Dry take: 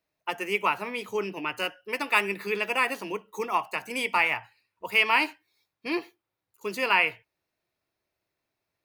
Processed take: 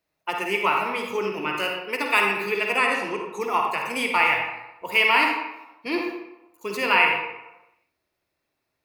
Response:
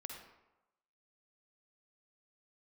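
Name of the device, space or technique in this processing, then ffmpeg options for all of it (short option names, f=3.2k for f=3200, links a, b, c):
bathroom: -filter_complex "[1:a]atrim=start_sample=2205[a];[0:a][a]afir=irnorm=-1:irlink=0,bandreject=f=104.5:t=h:w=4,bandreject=f=209:t=h:w=4,bandreject=f=313.5:t=h:w=4,bandreject=f=418:t=h:w=4,bandreject=f=522.5:t=h:w=4,bandreject=f=627:t=h:w=4,bandreject=f=731.5:t=h:w=4,bandreject=f=836:t=h:w=4,bandreject=f=940.5:t=h:w=4,bandreject=f=1.045k:t=h:w=4,bandreject=f=1.1495k:t=h:w=4,bandreject=f=1.254k:t=h:w=4,bandreject=f=1.3585k:t=h:w=4,bandreject=f=1.463k:t=h:w=4,bandreject=f=1.5675k:t=h:w=4,bandreject=f=1.672k:t=h:w=4,bandreject=f=1.7765k:t=h:w=4,bandreject=f=1.881k:t=h:w=4,bandreject=f=1.9855k:t=h:w=4,bandreject=f=2.09k:t=h:w=4,bandreject=f=2.1945k:t=h:w=4,bandreject=f=2.299k:t=h:w=4,bandreject=f=2.4035k:t=h:w=4,bandreject=f=2.508k:t=h:w=4,bandreject=f=2.6125k:t=h:w=4,bandreject=f=2.717k:t=h:w=4,bandreject=f=2.8215k:t=h:w=4,bandreject=f=2.926k:t=h:w=4,bandreject=f=3.0305k:t=h:w=4,bandreject=f=3.135k:t=h:w=4,bandreject=f=3.2395k:t=h:w=4,bandreject=f=3.344k:t=h:w=4,bandreject=f=3.4485k:t=h:w=4,bandreject=f=3.553k:t=h:w=4,bandreject=f=3.6575k:t=h:w=4,bandreject=f=3.762k:t=h:w=4,bandreject=f=3.8665k:t=h:w=4,bandreject=f=3.971k:t=h:w=4,bandreject=f=4.0755k:t=h:w=4,asettb=1/sr,asplit=3[b][c][d];[b]atrim=end=2.774[e];[c]atrim=start=2.77:end=3.41,asetpts=PTS-STARTPTS,afade=t=in:d=0.004:c=qsin,afade=t=out:st=0.636:d=0.004:c=qsin,lowpass=f=11k:w=0.5412,lowpass=f=11k:w=1.3066[f];[d]atrim=start=3.406[g];[e][f]acrossfade=d=0.004:c1=hsin:c2=qsin[h];[h][g]acrossfade=d=0.004:c1=qsin:c2=hsin,volume=8dB"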